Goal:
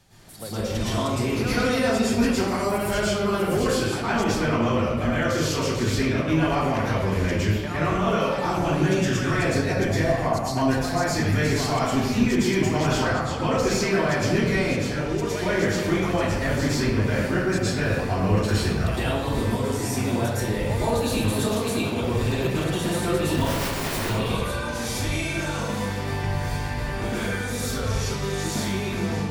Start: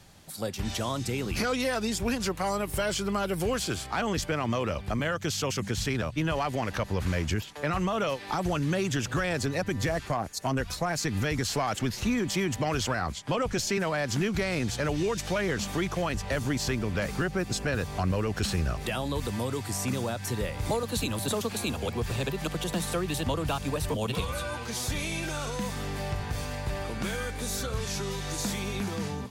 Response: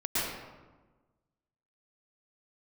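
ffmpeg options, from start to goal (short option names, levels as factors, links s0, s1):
-filter_complex "[0:a]asettb=1/sr,asplit=3[s0][s1][s2];[s0]atrim=end=14.594[s3];[s1]atrim=start=14.59:end=15.26,asetpts=PTS-STARTPTS,afade=t=in:d=0.004:c=qsin,afade=t=out:st=0.666:d=0.004:c=qsin,acompressor=threshold=0.0316:ratio=3[s4];[s2]atrim=start=15.256[s5];[s3][s4]acrossfade=d=0.004:c1=hsin:c2=qsin[s6];[s6][s5]acrossfade=d=0.004:c1=qsin:c2=hsin,asplit=3[s7][s8][s9];[s7]afade=t=out:st=23.33:d=0.02[s10];[s8]aeval=exprs='(mod(22.4*val(0)+1,2)-1)/22.4':c=same,afade=t=in:st=23.33:d=0.02,afade=t=out:st=23.98:d=0.02[s11];[s9]afade=t=in:st=23.98:d=0.02[s12];[s10][s11][s12]amix=inputs=3:normalize=0[s13];[1:a]atrim=start_sample=2205[s14];[s13][s14]afir=irnorm=-1:irlink=0,volume=0.668"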